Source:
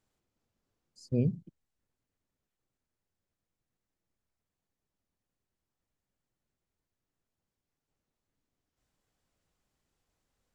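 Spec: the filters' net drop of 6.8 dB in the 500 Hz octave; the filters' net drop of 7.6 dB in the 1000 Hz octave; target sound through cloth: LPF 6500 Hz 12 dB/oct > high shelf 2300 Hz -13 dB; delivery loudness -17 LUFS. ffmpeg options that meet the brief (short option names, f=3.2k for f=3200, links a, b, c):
-af "lowpass=6.5k,equalizer=f=500:t=o:g=-7,equalizer=f=1k:t=o:g=-5.5,highshelf=f=2.3k:g=-13,volume=17dB"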